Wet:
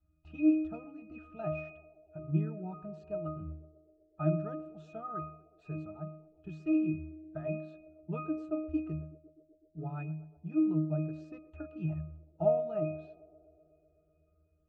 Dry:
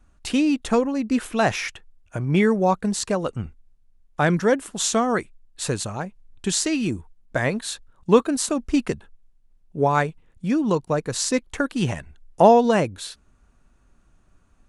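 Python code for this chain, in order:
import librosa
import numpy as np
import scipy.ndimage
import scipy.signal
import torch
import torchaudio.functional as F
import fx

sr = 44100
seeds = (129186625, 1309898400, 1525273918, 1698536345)

y = fx.spec_quant(x, sr, step_db=15)
y = scipy.signal.sosfilt(scipy.signal.butter(2, 5100.0, 'lowpass', fs=sr, output='sos'), y)
y = fx.peak_eq(y, sr, hz=890.0, db=3.0, octaves=0.75)
y = fx.octave_resonator(y, sr, note='D#', decay_s=0.58)
y = fx.echo_banded(y, sr, ms=125, feedback_pct=82, hz=460.0, wet_db=-17)
y = y * 10.0 ** (4.0 / 20.0)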